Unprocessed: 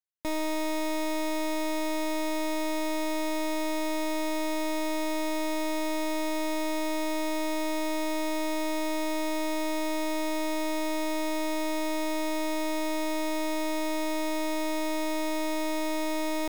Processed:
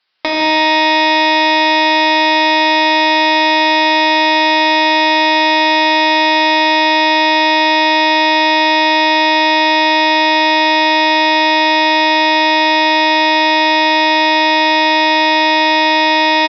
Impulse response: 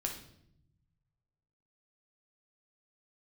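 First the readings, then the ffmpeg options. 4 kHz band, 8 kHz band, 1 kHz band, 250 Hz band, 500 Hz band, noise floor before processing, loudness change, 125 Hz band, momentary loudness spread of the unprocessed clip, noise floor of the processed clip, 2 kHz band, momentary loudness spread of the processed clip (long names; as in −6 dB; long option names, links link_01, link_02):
+25.5 dB, +5.0 dB, +24.0 dB, +12.0 dB, +14.5 dB, −29 dBFS, +20.0 dB, can't be measured, 0 LU, −12 dBFS, +25.5 dB, 0 LU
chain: -filter_complex "[0:a]highpass=frequency=1100:poles=1,asplit=2[link_01][link_02];[link_02]adelay=14,volume=-7dB[link_03];[link_01][link_03]amix=inputs=2:normalize=0,aecho=1:1:156|312|468|624:0.335|0.124|0.0459|0.017,acompressor=threshold=-50dB:ratio=12,asplit=2[link_04][link_05];[1:a]atrim=start_sample=2205,asetrate=30870,aresample=44100[link_06];[link_05][link_06]afir=irnorm=-1:irlink=0,volume=-4.5dB[link_07];[link_04][link_07]amix=inputs=2:normalize=0,dynaudnorm=framelen=110:gausssize=7:maxgain=13dB,apsyclip=29.5dB,aresample=11025,aresample=44100,volume=-1.5dB"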